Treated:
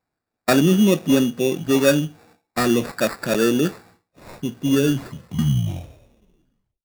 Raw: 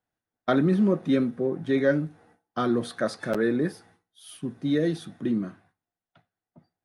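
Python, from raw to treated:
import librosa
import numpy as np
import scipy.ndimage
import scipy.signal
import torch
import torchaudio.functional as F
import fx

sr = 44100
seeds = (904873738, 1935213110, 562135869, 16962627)

y = fx.tape_stop_end(x, sr, length_s=2.23)
y = fx.vibrato(y, sr, rate_hz=1.8, depth_cents=11.0)
y = fx.sample_hold(y, sr, seeds[0], rate_hz=3100.0, jitter_pct=0)
y = F.gain(torch.from_numpy(y), 6.0).numpy()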